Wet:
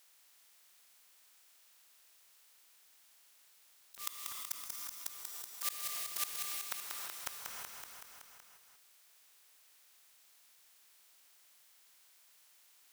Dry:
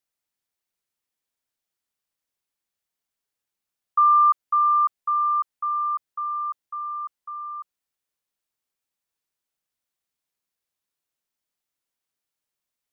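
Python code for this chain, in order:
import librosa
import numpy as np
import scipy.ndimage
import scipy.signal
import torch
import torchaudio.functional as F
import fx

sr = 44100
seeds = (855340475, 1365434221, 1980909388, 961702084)

y = fx.spec_flatten(x, sr, power=0.19)
y = fx.highpass(y, sr, hz=1100.0, slope=6)
y = fx.auto_swell(y, sr, attack_ms=782.0)
y = fx.leveller(y, sr, passes=3)
y = fx.level_steps(y, sr, step_db=22)
y = fx.auto_swell(y, sr, attack_ms=726.0)
y = fx.gate_flip(y, sr, shuts_db=-36.0, range_db=-37)
y = fx.echo_feedback(y, sr, ms=188, feedback_pct=51, wet_db=-8.5)
y = fx.rev_gated(y, sr, seeds[0], gate_ms=370, shape='rising', drr_db=7.5)
y = fx.env_flatten(y, sr, amount_pct=50)
y = F.gain(torch.from_numpy(y), 12.0).numpy()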